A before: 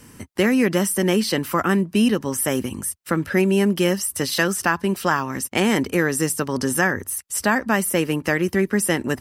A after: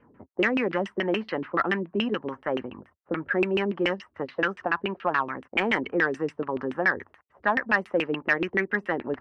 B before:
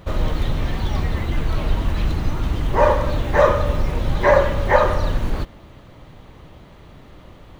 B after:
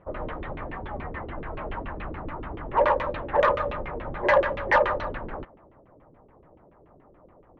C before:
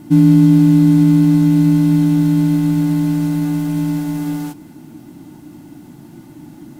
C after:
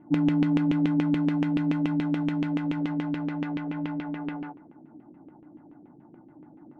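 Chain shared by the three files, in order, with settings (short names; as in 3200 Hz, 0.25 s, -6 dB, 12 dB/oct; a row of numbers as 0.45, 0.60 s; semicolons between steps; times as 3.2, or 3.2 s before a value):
pre-emphasis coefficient 0.8; LFO low-pass saw down 7 Hz 290–2900 Hz; overdrive pedal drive 13 dB, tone 2700 Hz, clips at -9.5 dBFS; low-pass opened by the level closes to 690 Hz, open at -20 dBFS; match loudness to -27 LUFS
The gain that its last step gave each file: +2.5, +1.5, -1.5 dB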